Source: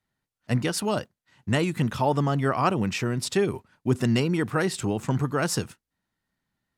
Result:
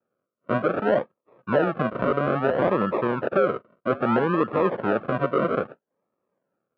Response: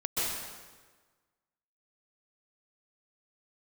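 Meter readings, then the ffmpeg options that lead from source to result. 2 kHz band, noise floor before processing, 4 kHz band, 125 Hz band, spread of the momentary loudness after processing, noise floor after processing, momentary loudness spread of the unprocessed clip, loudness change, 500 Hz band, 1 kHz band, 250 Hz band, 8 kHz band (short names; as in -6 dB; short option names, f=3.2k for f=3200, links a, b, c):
+1.5 dB, under -85 dBFS, -10.5 dB, -6.0 dB, 6 LU, -83 dBFS, 6 LU, +2.0 dB, +5.5 dB, +3.5 dB, 0.0 dB, under -35 dB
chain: -af "acrusher=samples=41:mix=1:aa=0.000001:lfo=1:lforange=24.6:lforate=0.61,highpass=260,equalizer=f=280:t=q:w=4:g=-3,equalizer=f=540:t=q:w=4:g=7,equalizer=f=800:t=q:w=4:g=-4,equalizer=f=1.3k:t=q:w=4:g=7,equalizer=f=2k:t=q:w=4:g=-9,lowpass=f=2.2k:w=0.5412,lowpass=f=2.2k:w=1.3066,alimiter=level_in=14dB:limit=-1dB:release=50:level=0:latency=1,volume=-8.5dB"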